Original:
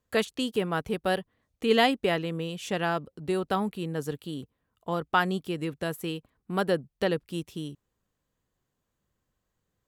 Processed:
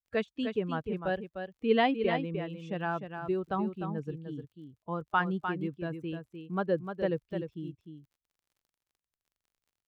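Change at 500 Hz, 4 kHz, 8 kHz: -3.5 dB, -10.0 dB, under -25 dB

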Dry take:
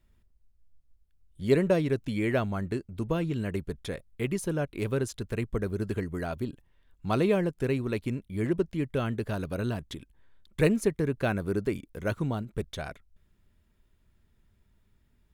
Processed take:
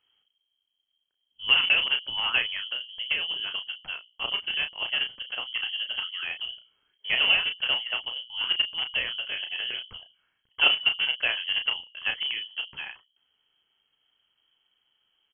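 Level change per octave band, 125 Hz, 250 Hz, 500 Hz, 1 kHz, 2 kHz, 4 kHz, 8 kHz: under -25 dB, -25.5 dB, -17.0 dB, -0.5 dB, +12.0 dB, +23.5 dB, under -35 dB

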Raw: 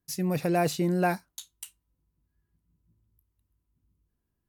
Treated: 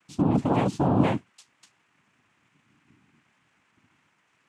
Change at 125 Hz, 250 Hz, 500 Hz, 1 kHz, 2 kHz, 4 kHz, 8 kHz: +4.5 dB, +5.0 dB, 0.0 dB, +2.5 dB, -4.5 dB, -3.5 dB, -11.0 dB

